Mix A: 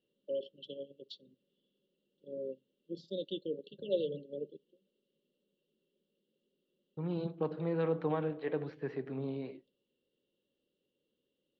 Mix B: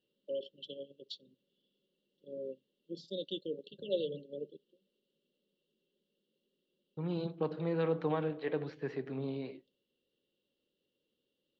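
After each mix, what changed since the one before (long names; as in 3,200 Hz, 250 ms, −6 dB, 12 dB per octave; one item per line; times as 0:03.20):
first voice: send off
master: add high-shelf EQ 4,200 Hz +11.5 dB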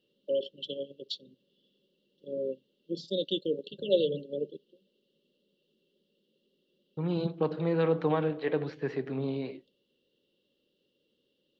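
first voice +8.5 dB
second voice +5.5 dB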